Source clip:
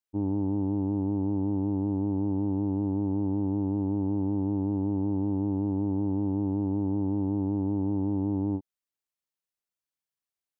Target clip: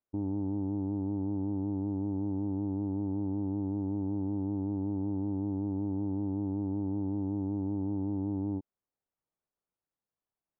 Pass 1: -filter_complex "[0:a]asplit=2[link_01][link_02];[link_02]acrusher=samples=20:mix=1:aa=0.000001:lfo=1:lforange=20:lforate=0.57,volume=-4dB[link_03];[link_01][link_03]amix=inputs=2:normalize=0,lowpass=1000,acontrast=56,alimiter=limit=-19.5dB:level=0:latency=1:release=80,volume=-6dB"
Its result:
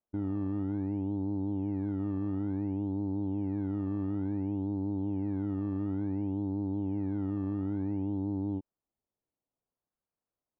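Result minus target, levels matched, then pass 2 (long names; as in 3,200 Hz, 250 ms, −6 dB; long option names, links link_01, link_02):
sample-and-hold swept by an LFO: distortion +13 dB
-filter_complex "[0:a]asplit=2[link_01][link_02];[link_02]acrusher=samples=5:mix=1:aa=0.000001:lfo=1:lforange=5:lforate=0.57,volume=-4dB[link_03];[link_01][link_03]amix=inputs=2:normalize=0,lowpass=1000,acontrast=56,alimiter=limit=-19.5dB:level=0:latency=1:release=80,volume=-6dB"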